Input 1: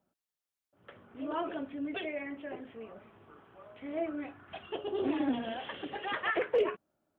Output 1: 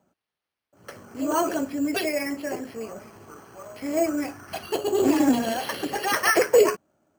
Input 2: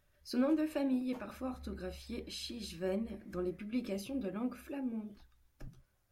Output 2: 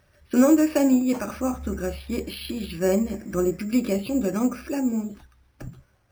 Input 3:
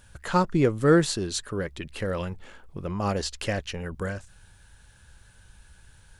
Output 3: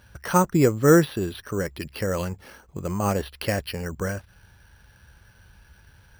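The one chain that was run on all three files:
HPF 48 Hz; careless resampling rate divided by 6×, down filtered, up hold; match loudness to -24 LUFS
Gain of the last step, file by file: +11.0, +14.5, +3.0 dB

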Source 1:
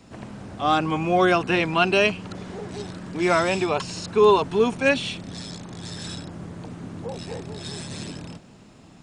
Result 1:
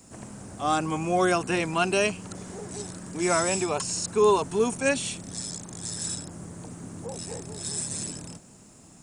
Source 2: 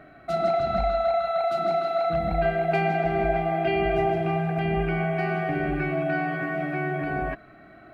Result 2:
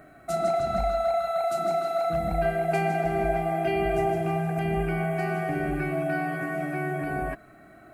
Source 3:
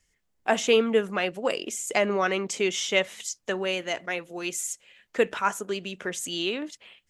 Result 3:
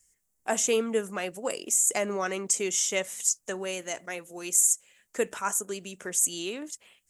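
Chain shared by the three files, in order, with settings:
resonant high shelf 5500 Hz +14 dB, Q 1.5; match loudness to -27 LUFS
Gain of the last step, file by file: -4.0, -1.5, -5.0 dB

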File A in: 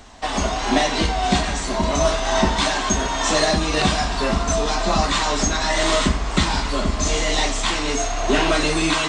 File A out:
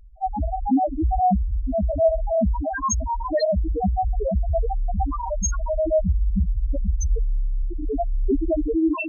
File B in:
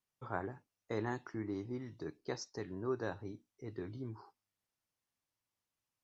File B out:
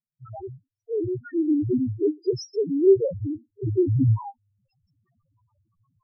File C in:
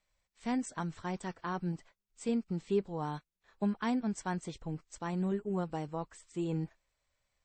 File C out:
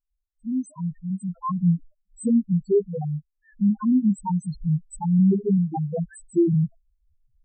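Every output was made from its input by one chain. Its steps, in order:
recorder AGC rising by 9.8 dB/s; loudest bins only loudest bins 1; match loudness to -24 LUFS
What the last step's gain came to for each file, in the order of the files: +8.0, +10.5, +6.0 dB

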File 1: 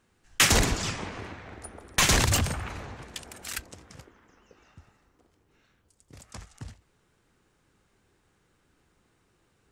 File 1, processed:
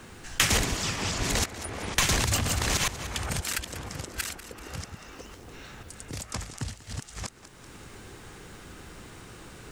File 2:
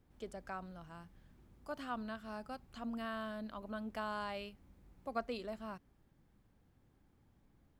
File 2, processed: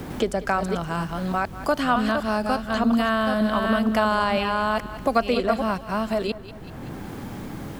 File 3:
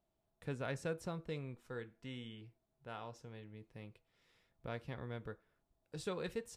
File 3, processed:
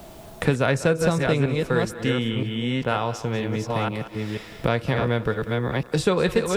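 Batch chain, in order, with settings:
reverse delay 0.486 s, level -5 dB; thinning echo 0.191 s, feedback 36%, level -16 dB; three-band squash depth 70%; normalise peaks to -6 dBFS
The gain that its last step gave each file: +1.5, +20.0, +20.5 dB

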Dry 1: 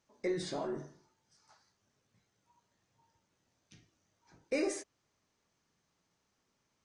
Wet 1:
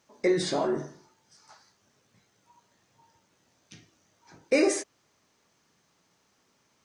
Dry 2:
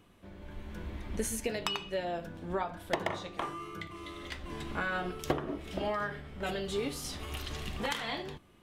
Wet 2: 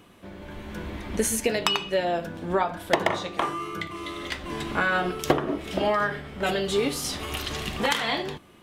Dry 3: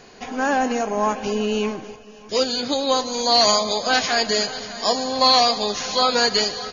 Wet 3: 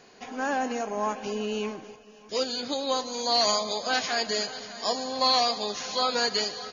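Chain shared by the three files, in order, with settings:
low shelf 81 Hz -12 dB; match loudness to -27 LUFS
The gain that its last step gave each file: +11.0, +10.0, -7.0 dB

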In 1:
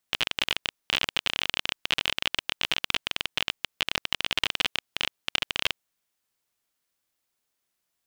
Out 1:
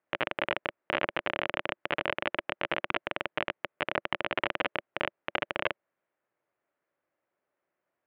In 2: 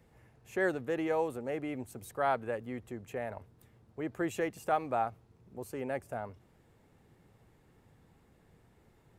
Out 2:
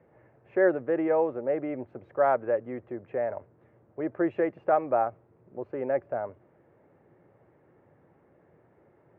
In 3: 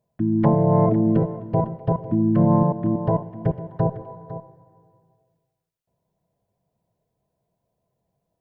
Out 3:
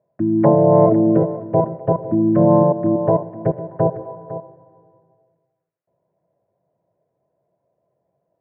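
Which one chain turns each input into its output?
speaker cabinet 130–2000 Hz, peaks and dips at 210 Hz -5 dB, 350 Hz +5 dB, 580 Hz +9 dB; gain +3 dB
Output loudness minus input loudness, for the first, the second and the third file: -5.0, +7.0, +4.5 LU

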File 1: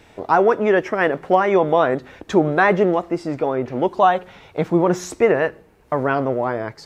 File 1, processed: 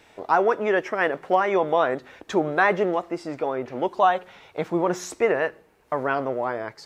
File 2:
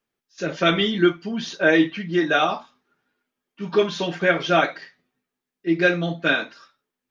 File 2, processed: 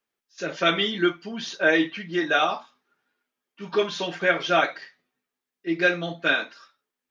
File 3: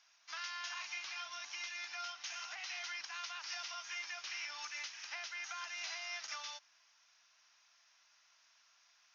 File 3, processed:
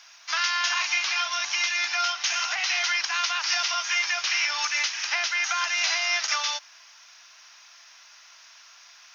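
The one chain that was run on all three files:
low shelf 280 Hz -10.5 dB; match loudness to -24 LUFS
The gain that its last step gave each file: -2.5, -1.0, +18.5 dB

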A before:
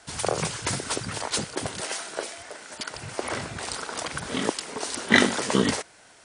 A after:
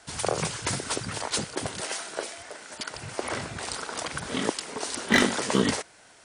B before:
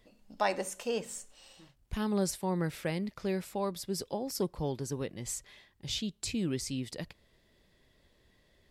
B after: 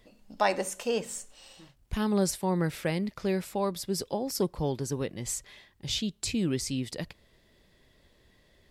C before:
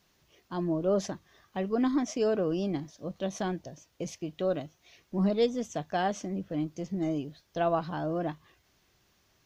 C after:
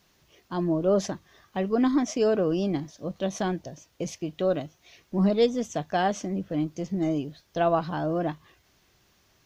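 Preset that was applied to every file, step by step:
overloaded stage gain 11 dB; normalise peaks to -12 dBFS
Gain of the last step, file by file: -1.0, +4.0, +4.0 dB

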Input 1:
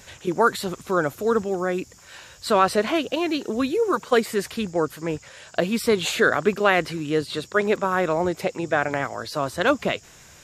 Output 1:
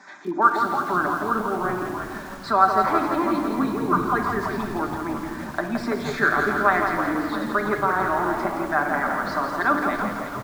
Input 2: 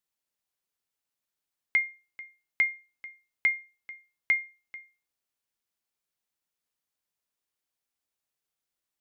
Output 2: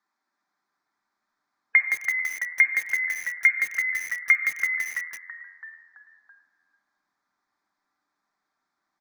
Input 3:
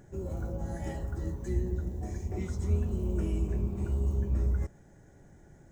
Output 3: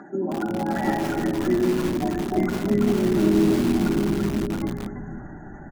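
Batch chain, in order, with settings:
spectral gate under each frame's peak -30 dB strong; steep high-pass 240 Hz 36 dB/oct; high shelf 4300 Hz -6 dB; comb 6.7 ms, depth 31%; in parallel at +2 dB: compressor 12:1, threshold -29 dBFS; on the sum: air absorption 190 m; fixed phaser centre 1200 Hz, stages 4; on a send: frequency-shifting echo 0.332 s, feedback 51%, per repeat -84 Hz, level -9 dB; on the sum: shoebox room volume 2000 m³, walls mixed, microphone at 1.2 m; lo-fi delay 0.167 s, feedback 55%, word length 7-bit, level -6 dB; match loudness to -23 LUFS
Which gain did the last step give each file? +1.0, +11.5, +16.5 dB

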